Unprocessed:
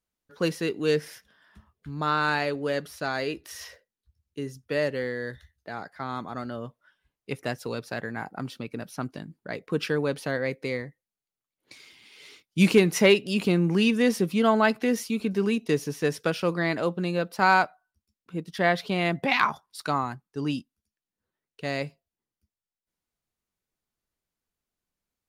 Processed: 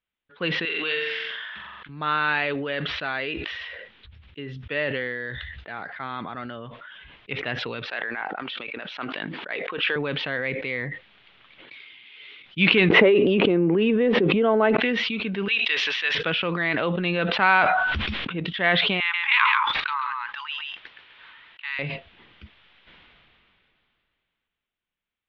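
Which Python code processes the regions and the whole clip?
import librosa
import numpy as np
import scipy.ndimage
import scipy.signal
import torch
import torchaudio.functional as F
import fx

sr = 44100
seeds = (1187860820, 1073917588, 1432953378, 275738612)

y = fx.chain(x, sr, fx.highpass(hz=1200.0, slope=6),
    fx.room_flutter(wall_m=7.6, rt60_s=0.5),
    fx.pre_swell(db_per_s=21.0), at=(0.65, 1.89))
y = fx.chain(y, sr, fx.highpass(hz=450.0, slope=12),
    fx.sustainer(db_per_s=21.0), at=(7.85, 9.96))
y = fx.chain(y, sr, fx.bandpass_q(hz=410.0, q=1.7),
    fx.env_flatten(amount_pct=100), at=(12.9, 14.77))
y = fx.chain(y, sr, fx.highpass(hz=1000.0, slope=12),
    fx.high_shelf(hz=2500.0, db=10.5), at=(15.48, 16.15))
y = fx.chain(y, sr, fx.lowpass(hz=7200.0, slope=12),
    fx.env_flatten(amount_pct=50), at=(16.74, 18.4))
y = fx.chain(y, sr, fx.brickwall_highpass(low_hz=840.0),
    fx.echo_single(ms=135, db=-9.0),
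    fx.resample_bad(factor=4, down='none', up='hold'), at=(19.0, 21.79))
y = scipy.signal.sosfilt(scipy.signal.ellip(4, 1.0, 80, 3500.0, 'lowpass', fs=sr, output='sos'), y)
y = fx.peak_eq(y, sr, hz=2600.0, db=11.5, octaves=1.9)
y = fx.sustainer(y, sr, db_per_s=21.0)
y = y * 10.0 ** (-4.0 / 20.0)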